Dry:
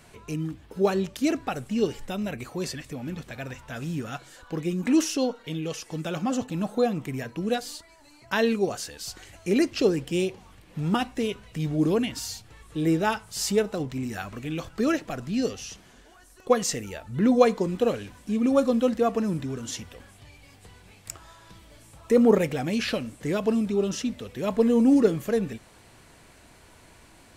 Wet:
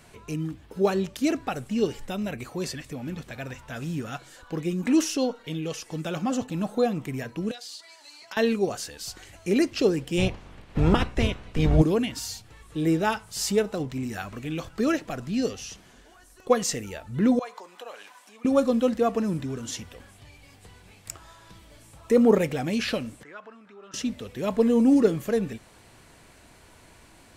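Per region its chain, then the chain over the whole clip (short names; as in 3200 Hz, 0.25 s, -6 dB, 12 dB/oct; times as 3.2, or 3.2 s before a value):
7.51–8.37 HPF 440 Hz + bell 4300 Hz +11.5 dB 1.9 oct + compressor 8:1, threshold -37 dBFS
10.17–11.81 spectral limiter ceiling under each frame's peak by 22 dB + RIAA curve playback
17.39–18.45 compressor 2.5:1, threshold -36 dBFS + resonant high-pass 870 Hz, resonance Q 1.7
23.23–23.94 compressor 3:1, threshold -26 dBFS + band-pass 1400 Hz, Q 2.6
whole clip: dry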